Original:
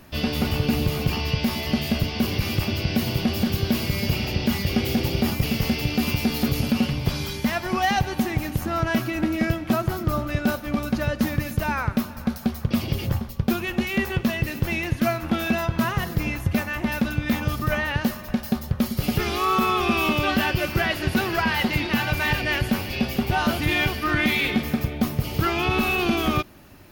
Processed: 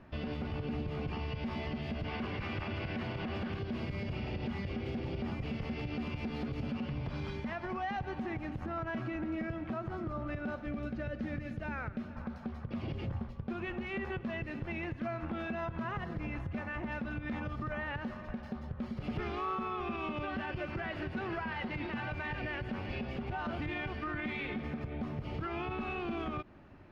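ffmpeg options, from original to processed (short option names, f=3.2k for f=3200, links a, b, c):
-filter_complex "[0:a]asettb=1/sr,asplit=3[a][b][c];[a]atrim=end=2.044[d];[b]atrim=start=2.04:end=3.59,asetpts=PTS-STARTPTS,afade=t=in:d=0.004:c=qsin,afade=t=out:st=1.546:d=0.004:c=qsin,equalizer=f=1.5k:w=0.53:g=8[e];[c]atrim=start=3.586[f];[d][e]acrossfade=d=0.004:c1=hsin:c2=qsin[g];[g][f]acrossfade=d=0.004:c1=qsin:c2=hsin,asettb=1/sr,asplit=3[h][i][j];[h]atrim=end=10.634[k];[i]atrim=start=10.63:end=12.16,asetpts=PTS-STARTPTS,afade=t=in:d=0.004:c=qsin,afade=t=out:st=1.526:d=0.004:c=qsin,equalizer=f=1k:t=o:w=0.48:g=-12[l];[j]atrim=start=12.156[m];[k][l]acrossfade=d=0.004:c1=hsin:c2=qsin[n];[n][m]acrossfade=d=0.004:c1=qsin:c2=hsin,asettb=1/sr,asplit=3[o][p][q];[o]atrim=end=19.034[r];[p]atrim=start=19.03:end=19.55,asetpts=PTS-STARTPTS,afade=t=in:d=0.004:c=qsin,afade=t=out:st=0.516:d=0.004:c=qsin,asoftclip=type=hard:threshold=-17dB[s];[q]atrim=start=19.546[t];[r][s]acrossfade=d=0.004:c1=hsin:c2=qsin[u];[u][t]acrossfade=d=0.004:c1=qsin:c2=hsin,lowpass=2k,acompressor=threshold=-23dB:ratio=2,alimiter=limit=-22.5dB:level=0:latency=1:release=74,volume=-6.5dB"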